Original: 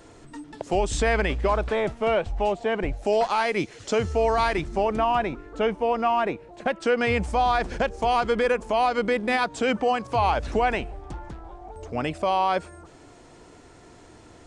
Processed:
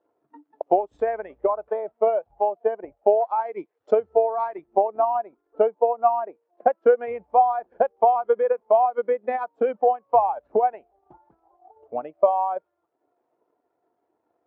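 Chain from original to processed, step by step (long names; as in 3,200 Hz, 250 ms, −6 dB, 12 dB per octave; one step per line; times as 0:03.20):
transient designer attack +11 dB, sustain −7 dB
surface crackle 510 per second −38 dBFS
resonant band-pass 730 Hz, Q 1
every bin expanded away from the loudest bin 1.5 to 1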